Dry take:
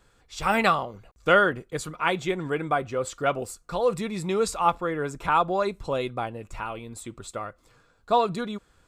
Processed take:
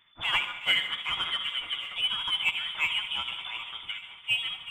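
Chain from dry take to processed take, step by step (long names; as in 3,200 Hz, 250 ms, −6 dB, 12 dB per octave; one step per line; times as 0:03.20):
dynamic equaliser 1,800 Hz, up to −4 dB, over −37 dBFS, Q 1.7
voice inversion scrambler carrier 3,500 Hz
in parallel at −3 dB: soft clipping −24 dBFS, distortion −8 dB
on the sum: parametric band 1,200 Hz +9.5 dB 1.1 octaves
on a send: delay that swaps between a low-pass and a high-pass 355 ms, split 2,000 Hz, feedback 80%, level −12 dB
on the sum: dense smooth reverb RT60 1.4 s, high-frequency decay 0.95×, pre-delay 110 ms, DRR 8.5 dB
time stretch by overlap-add 0.53×, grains 142 ms
level −8.5 dB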